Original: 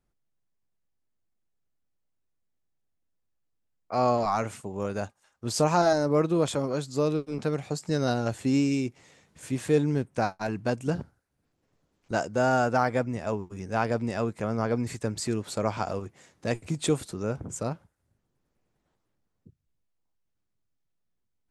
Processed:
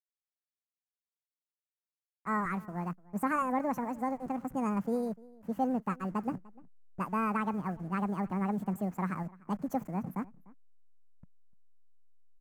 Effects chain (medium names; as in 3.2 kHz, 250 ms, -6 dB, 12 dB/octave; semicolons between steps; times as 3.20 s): send-on-delta sampling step -41 dBFS; peaking EQ 210 Hz -3.5 dB 0.71 oct; speed mistake 45 rpm record played at 78 rpm; FFT filter 100 Hz 0 dB, 180 Hz +7 dB, 410 Hz -6 dB, 1.2 kHz -5 dB, 2 kHz -9 dB, 3.7 kHz -25 dB, 6.8 kHz -15 dB; on a send: delay 298 ms -22 dB; on the sum: tape noise reduction on one side only decoder only; trim -2.5 dB